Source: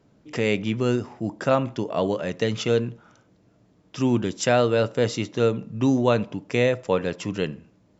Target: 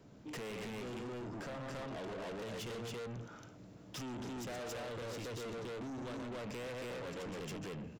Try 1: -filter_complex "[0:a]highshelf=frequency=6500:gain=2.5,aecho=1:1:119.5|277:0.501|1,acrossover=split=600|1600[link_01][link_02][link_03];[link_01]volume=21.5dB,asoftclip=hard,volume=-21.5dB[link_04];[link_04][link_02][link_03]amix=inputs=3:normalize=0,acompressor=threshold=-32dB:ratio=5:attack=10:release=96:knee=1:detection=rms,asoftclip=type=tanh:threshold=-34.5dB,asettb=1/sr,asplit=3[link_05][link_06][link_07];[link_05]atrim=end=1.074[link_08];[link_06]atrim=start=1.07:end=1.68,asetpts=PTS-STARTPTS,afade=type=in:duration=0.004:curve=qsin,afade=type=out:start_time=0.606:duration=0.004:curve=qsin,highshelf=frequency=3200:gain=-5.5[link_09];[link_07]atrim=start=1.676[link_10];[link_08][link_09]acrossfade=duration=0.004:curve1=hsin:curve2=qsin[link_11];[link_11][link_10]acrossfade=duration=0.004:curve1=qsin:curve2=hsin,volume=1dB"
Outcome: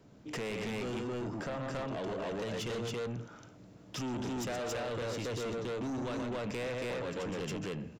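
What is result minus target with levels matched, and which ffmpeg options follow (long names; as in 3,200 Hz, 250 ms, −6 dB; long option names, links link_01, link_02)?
gain into a clipping stage and back: distortion +28 dB; soft clipping: distortion −7 dB
-filter_complex "[0:a]highshelf=frequency=6500:gain=2.5,aecho=1:1:119.5|277:0.501|1,acrossover=split=600|1600[link_01][link_02][link_03];[link_01]volume=10dB,asoftclip=hard,volume=-10dB[link_04];[link_04][link_02][link_03]amix=inputs=3:normalize=0,acompressor=threshold=-32dB:ratio=5:attack=10:release=96:knee=1:detection=rms,asoftclip=type=tanh:threshold=-42.5dB,asettb=1/sr,asplit=3[link_05][link_06][link_07];[link_05]atrim=end=1.074[link_08];[link_06]atrim=start=1.07:end=1.68,asetpts=PTS-STARTPTS,afade=type=in:duration=0.004:curve=qsin,afade=type=out:start_time=0.606:duration=0.004:curve=qsin,highshelf=frequency=3200:gain=-5.5[link_09];[link_07]atrim=start=1.676[link_10];[link_08][link_09]acrossfade=duration=0.004:curve1=hsin:curve2=qsin[link_11];[link_11][link_10]acrossfade=duration=0.004:curve1=qsin:curve2=hsin,volume=1dB"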